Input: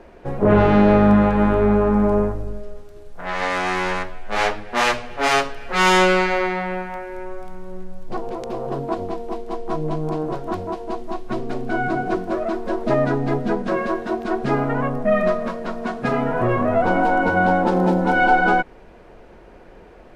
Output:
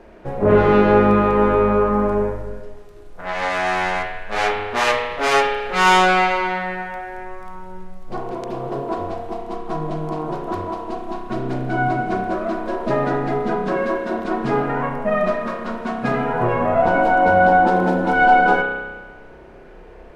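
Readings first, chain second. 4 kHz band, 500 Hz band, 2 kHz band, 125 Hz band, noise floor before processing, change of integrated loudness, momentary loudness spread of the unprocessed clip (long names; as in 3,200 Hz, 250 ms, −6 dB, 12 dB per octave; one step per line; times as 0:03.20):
+0.5 dB, +1.5 dB, +2.0 dB, −2.0 dB, −45 dBFS, +1.0 dB, 15 LU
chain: spring reverb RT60 1.3 s, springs 31 ms, chirp 50 ms, DRR 1 dB
level −1 dB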